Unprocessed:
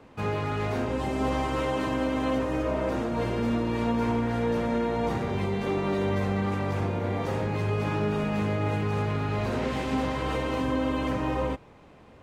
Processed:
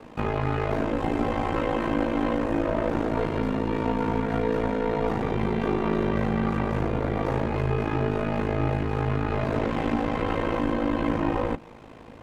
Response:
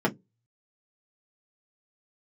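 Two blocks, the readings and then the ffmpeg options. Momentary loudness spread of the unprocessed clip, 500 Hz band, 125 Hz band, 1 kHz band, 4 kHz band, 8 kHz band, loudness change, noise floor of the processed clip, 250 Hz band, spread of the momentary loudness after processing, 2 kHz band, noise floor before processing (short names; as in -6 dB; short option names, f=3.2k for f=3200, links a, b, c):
2 LU, +2.0 dB, +1.0 dB, +2.0 dB, -2.0 dB, n/a, +1.5 dB, -45 dBFS, +2.0 dB, 2 LU, +1.5 dB, -52 dBFS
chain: -filter_complex "[0:a]aeval=exprs='0.168*(cos(1*acos(clip(val(0)/0.168,-1,1)))-cos(1*PI/2))+0.0119*(cos(8*acos(clip(val(0)/0.168,-1,1)))-cos(8*PI/2))':c=same,acompressor=threshold=-28dB:ratio=6,aeval=exprs='val(0)*sin(2*PI*27*n/s)':c=same,acrossover=split=2800[a][b];[b]acompressor=threshold=-59dB:ratio=4:attack=1:release=60[c];[a][c]amix=inputs=2:normalize=0,asplit=2[d][e];[1:a]atrim=start_sample=2205[f];[e][f]afir=irnorm=-1:irlink=0,volume=-27dB[g];[d][g]amix=inputs=2:normalize=0,volume=8.5dB"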